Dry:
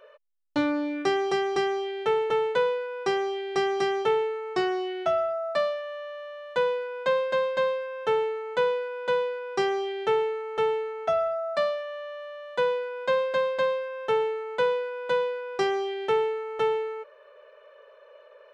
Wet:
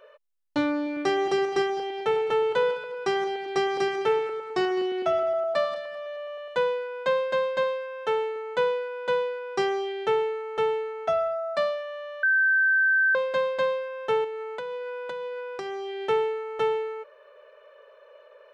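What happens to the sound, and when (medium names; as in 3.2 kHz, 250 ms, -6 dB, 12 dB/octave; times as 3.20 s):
0.76–6.55 s: backward echo that repeats 104 ms, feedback 55%, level -11 dB
7.63–8.36 s: bass shelf 190 Hz -10 dB
12.23–13.15 s: bleep 1.55 kHz -18 dBFS
14.24–16.01 s: compression 10:1, threshold -30 dBFS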